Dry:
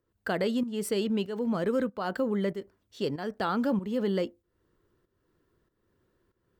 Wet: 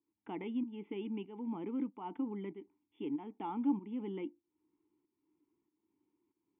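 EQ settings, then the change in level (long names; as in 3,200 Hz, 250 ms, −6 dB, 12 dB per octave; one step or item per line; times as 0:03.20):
formant filter u
linear-phase brick-wall low-pass 3,600 Hz
+2.5 dB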